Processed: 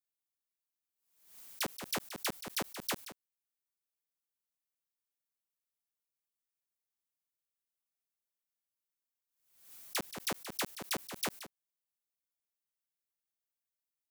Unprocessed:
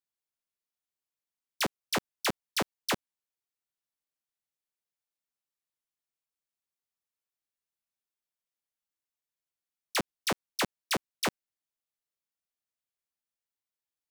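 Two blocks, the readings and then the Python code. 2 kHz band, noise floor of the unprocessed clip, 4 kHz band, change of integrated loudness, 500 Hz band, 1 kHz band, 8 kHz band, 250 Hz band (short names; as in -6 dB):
-7.0 dB, under -85 dBFS, -5.5 dB, -5.0 dB, -7.5 dB, -7.5 dB, -2.5 dB, -7.0 dB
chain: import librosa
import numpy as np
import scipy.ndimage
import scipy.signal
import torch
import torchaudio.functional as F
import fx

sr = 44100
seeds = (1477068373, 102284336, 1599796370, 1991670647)

p1 = fx.high_shelf(x, sr, hz=8300.0, db=10.5)
p2 = p1 + fx.echo_single(p1, sr, ms=177, db=-13.5, dry=0)
p3 = fx.pre_swell(p2, sr, db_per_s=87.0)
y = F.gain(torch.from_numpy(p3), -8.0).numpy()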